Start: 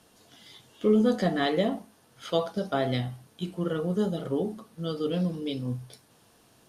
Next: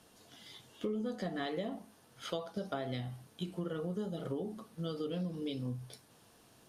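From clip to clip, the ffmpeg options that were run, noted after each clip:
-af "acompressor=threshold=0.0251:ratio=6,volume=0.75"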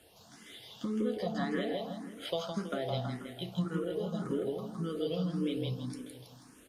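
-filter_complex "[0:a]aecho=1:1:162|324|486|648|810|972|1134:0.708|0.375|0.199|0.105|0.0559|0.0296|0.0157,asplit=2[s0][s1];[s1]afreqshift=1.8[s2];[s0][s2]amix=inputs=2:normalize=1,volume=1.68"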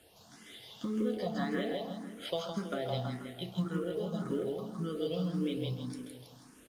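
-filter_complex "[0:a]aecho=1:1:134:0.188,asplit=2[s0][s1];[s1]acrusher=bits=5:mode=log:mix=0:aa=0.000001,volume=0.299[s2];[s0][s2]amix=inputs=2:normalize=0,volume=0.708"

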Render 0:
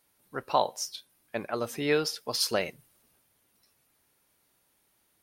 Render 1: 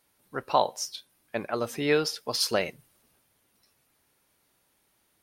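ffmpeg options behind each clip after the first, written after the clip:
-af "highshelf=f=9300:g=-4,volume=1.26"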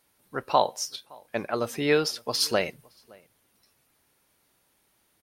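-filter_complex "[0:a]asplit=2[s0][s1];[s1]adelay=565.6,volume=0.0501,highshelf=f=4000:g=-12.7[s2];[s0][s2]amix=inputs=2:normalize=0,volume=1.19"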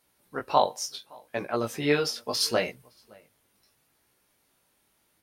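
-af "flanger=delay=16:depth=5.3:speed=0.72,volume=1.26"

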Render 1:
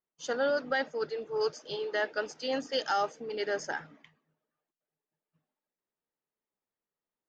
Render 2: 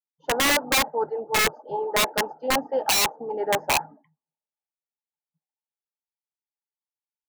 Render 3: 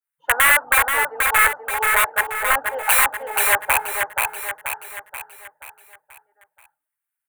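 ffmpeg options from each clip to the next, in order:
-af "afftdn=nr=28:nf=-53,lowpass=f=860:t=q:w=8.7,aeval=exprs='(mod(8.41*val(0)+1,2)-1)/8.41':c=same,volume=1.5"
-filter_complex "[0:a]firequalizer=gain_entry='entry(100,0);entry(180,-24);entry(320,-13);entry(560,-5);entry(1500,13);entry(5100,-16);entry(8800,10)':delay=0.05:min_phase=1,asplit=2[s0][s1];[s1]aecho=0:1:481|962|1443|1924|2405|2886:0.596|0.28|0.132|0.0618|0.0291|0.0137[s2];[s0][s2]amix=inputs=2:normalize=0,adynamicequalizer=threshold=0.0398:dfrequency=1600:dqfactor=0.7:tfrequency=1600:tqfactor=0.7:attack=5:release=100:ratio=0.375:range=3.5:mode=cutabove:tftype=highshelf,volume=1.19"

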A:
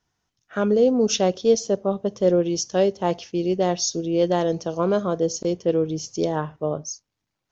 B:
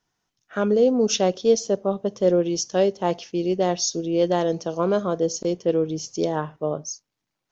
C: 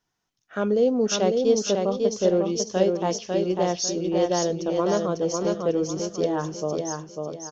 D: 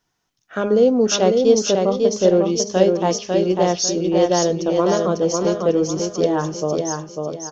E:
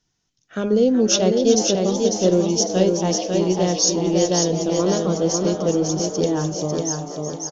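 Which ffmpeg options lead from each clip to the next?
-af "equalizer=f=71:w=1.4:g=-12"
-af "aecho=1:1:548|1096|1644|2192:0.631|0.221|0.0773|0.0271,volume=0.75"
-af "bandreject=f=204.1:t=h:w=4,bandreject=f=408.2:t=h:w=4,bandreject=f=612.3:t=h:w=4,bandreject=f=816.4:t=h:w=4,bandreject=f=1020.5:t=h:w=4,bandreject=f=1224.6:t=h:w=4,bandreject=f=1428.7:t=h:w=4,bandreject=f=1632.8:t=h:w=4,bandreject=f=1836.9:t=h:w=4,bandreject=f=2041:t=h:w=4,bandreject=f=2245.1:t=h:w=4,bandreject=f=2449.2:t=h:w=4,volume=2"
-filter_complex "[0:a]equalizer=f=980:t=o:w=2.9:g=-12,asplit=2[s0][s1];[s1]asplit=4[s2][s3][s4][s5];[s2]adelay=376,afreqshift=130,volume=0.282[s6];[s3]adelay=752,afreqshift=260,volume=0.116[s7];[s4]adelay=1128,afreqshift=390,volume=0.0473[s8];[s5]adelay=1504,afreqshift=520,volume=0.0195[s9];[s6][s7][s8][s9]amix=inputs=4:normalize=0[s10];[s0][s10]amix=inputs=2:normalize=0,aresample=16000,aresample=44100,volume=1.68"

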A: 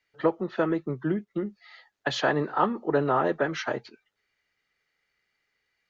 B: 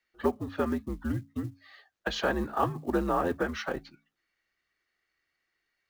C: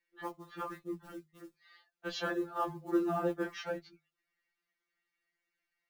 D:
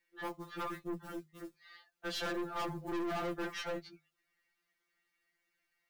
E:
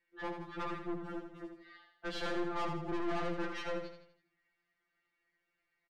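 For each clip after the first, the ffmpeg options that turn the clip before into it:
-af "bandreject=f=60:t=h:w=6,bandreject=f=120:t=h:w=6,bandreject=f=180:t=h:w=6,bandreject=f=240:t=h:w=6,bandreject=f=300:t=h:w=6,bandreject=f=360:t=h:w=6,acrusher=bits=7:mode=log:mix=0:aa=0.000001,afreqshift=-84,volume=0.668"
-af "afftfilt=real='re*2.83*eq(mod(b,8),0)':imag='im*2.83*eq(mod(b,8),0)':win_size=2048:overlap=0.75,volume=0.631"
-af "aeval=exprs='(tanh(100*val(0)+0.35)-tanh(0.35))/100':c=same,volume=1.88"
-filter_complex "[0:a]aeval=exprs='clip(val(0),-1,0.00562)':c=same,adynamicsmooth=sensitivity=4:basefreq=3400,asplit=2[s0][s1];[s1]aecho=0:1:81|162|243|324|405:0.447|0.197|0.0865|0.0381|0.0167[s2];[s0][s2]amix=inputs=2:normalize=0,volume=1.19"

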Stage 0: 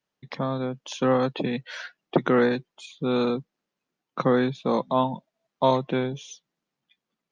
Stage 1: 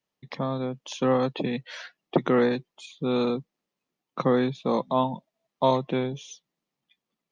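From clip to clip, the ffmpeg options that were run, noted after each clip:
-af "equalizer=f=1500:t=o:w=0.23:g=-6.5,volume=0.891"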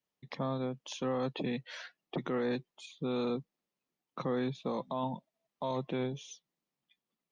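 -af "alimiter=limit=0.1:level=0:latency=1:release=16,volume=0.531"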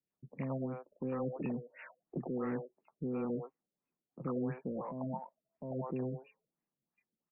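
-filter_complex "[0:a]aeval=exprs='0.0562*(cos(1*acos(clip(val(0)/0.0562,-1,1)))-cos(1*PI/2))+0.00141*(cos(5*acos(clip(val(0)/0.0562,-1,1)))-cos(5*PI/2))':c=same,acrossover=split=520|2000[s0][s1][s2];[s2]adelay=70[s3];[s1]adelay=100[s4];[s0][s4][s3]amix=inputs=3:normalize=0,afftfilt=real='re*lt(b*sr/1024,620*pow(2900/620,0.5+0.5*sin(2*PI*2.9*pts/sr)))':imag='im*lt(b*sr/1024,620*pow(2900/620,0.5+0.5*sin(2*PI*2.9*pts/sr)))':win_size=1024:overlap=0.75,volume=0.841"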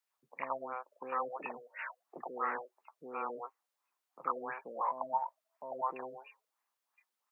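-af "highpass=f=1000:t=q:w=2.1,volume=2.24"

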